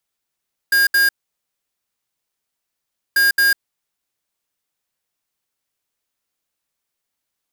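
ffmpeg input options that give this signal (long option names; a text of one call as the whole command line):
ffmpeg -f lavfi -i "aevalsrc='0.2*(2*lt(mod(1620*t,1),0.5)-1)*clip(min(mod(mod(t,2.44),0.22),0.15-mod(mod(t,2.44),0.22))/0.005,0,1)*lt(mod(t,2.44),0.44)':duration=4.88:sample_rate=44100" out.wav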